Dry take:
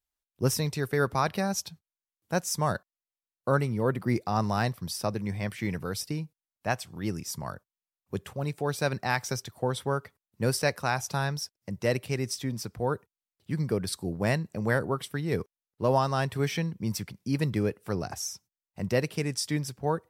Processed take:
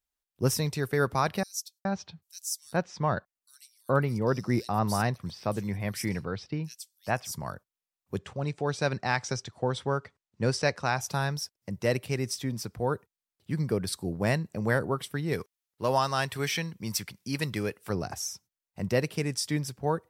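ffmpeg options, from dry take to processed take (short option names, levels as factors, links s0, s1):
-filter_complex "[0:a]asettb=1/sr,asplit=3[s0][s1][s2];[s0]atrim=end=1.434[s3];[s1]atrim=start=1.43:end=7.32,asetpts=PTS-STARTPTS,afade=t=in:d=0.004:c=qsin,afade=t=out:st=5.886:d=0.004:c=qsin,acrossover=split=4200[s4][s5];[s4]adelay=420[s6];[s6][s5]amix=inputs=2:normalize=0,atrim=end_sample=259749[s7];[s2]atrim=start=7.316[s8];[s3][s7]acrossfade=d=0.004:c1=hsin:c2=qsin[s9];[s9][s8]acrossfade=d=0.004:c1=qsin:c2=hsin,asettb=1/sr,asplit=3[s10][s11][s12];[s10]atrim=end=8.184[s13];[s11]atrim=start=8.18:end=11.01,asetpts=PTS-STARTPTS,afade=t=in:d=0.004:c=qsin,afade=t=out:st=2.826:d=0.004:c=qsin,lowpass=f=7400:w=0.5412,lowpass=f=7400:w=1.3066[s14];[s12]atrim=start=11.006[s15];[s13][s14]acrossfade=d=0.004:c1=hsin:c2=qsin[s16];[s16][s15]acrossfade=d=0.004:c1=qsin:c2=hsin,asettb=1/sr,asplit=3[s17][s18][s19];[s17]atrim=end=15.334[s20];[s18]atrim=start=15.33:end=17.9,asetpts=PTS-STARTPTS,afade=t=in:d=0.004:c=qsin,afade=t=out:st=2.566:d=0.004:c=qsin,tiltshelf=f=880:g=-5.5[s21];[s19]atrim=start=17.896[s22];[s20][s21]acrossfade=d=0.004:c1=hsin:c2=qsin[s23];[s23][s22]acrossfade=d=0.004:c1=qsin:c2=hsin"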